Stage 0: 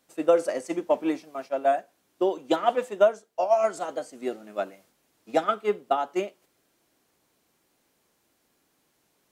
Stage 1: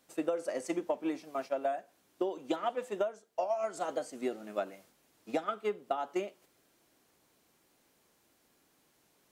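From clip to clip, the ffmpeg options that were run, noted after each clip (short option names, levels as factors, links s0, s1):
-af "acompressor=threshold=0.0355:ratio=12"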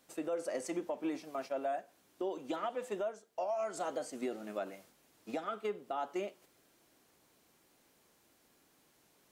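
-af "alimiter=level_in=1.78:limit=0.0631:level=0:latency=1:release=58,volume=0.562,volume=1.12"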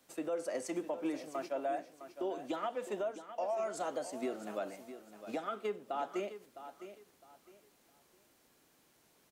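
-filter_complex "[0:a]acrossover=split=140|630|1900[s0][s1][s2][s3];[s0]acrusher=samples=32:mix=1:aa=0.000001[s4];[s4][s1][s2][s3]amix=inputs=4:normalize=0,aecho=1:1:659|1318|1977:0.251|0.0653|0.017"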